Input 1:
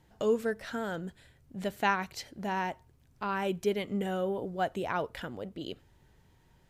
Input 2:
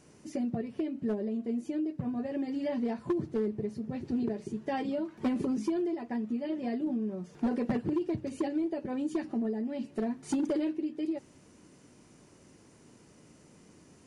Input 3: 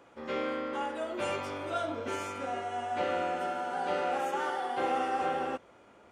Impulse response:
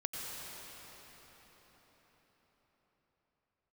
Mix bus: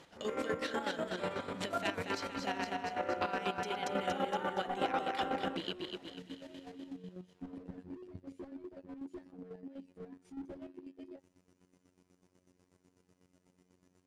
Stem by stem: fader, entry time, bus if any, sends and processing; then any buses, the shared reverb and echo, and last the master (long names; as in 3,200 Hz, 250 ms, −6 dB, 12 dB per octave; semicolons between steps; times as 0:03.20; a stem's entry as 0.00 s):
+3.0 dB, 0.00 s, no send, echo send −4 dB, meter weighting curve D; downward compressor 4 to 1, threshold −40 dBFS, peak gain reduction 18.5 dB; floating-point word with a short mantissa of 4 bits
−7.0 dB, 0.00 s, no send, no echo send, phases set to zero 90.7 Hz; slew-rate limiting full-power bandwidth 6.8 Hz
−2.5 dB, 0.00 s, no send, no echo send, low-pass filter 2,300 Hz 24 dB per octave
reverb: not used
echo: repeating echo 233 ms, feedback 56%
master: low-pass filter 12,000 Hz 24 dB per octave; square-wave tremolo 8.1 Hz, depth 60%, duty 40%